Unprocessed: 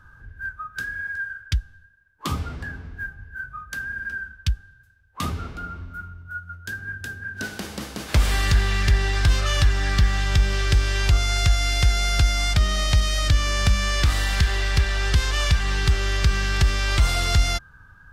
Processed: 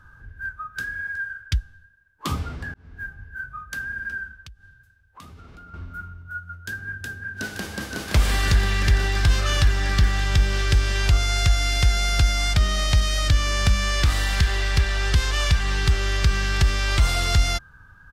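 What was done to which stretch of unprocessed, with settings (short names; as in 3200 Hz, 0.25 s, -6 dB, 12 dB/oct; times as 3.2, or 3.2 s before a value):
2.74–3.25 fade in equal-power
4.41–5.74 compressor 8:1, threshold -41 dBFS
7.03–8.03 echo throw 0.52 s, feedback 80%, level -4 dB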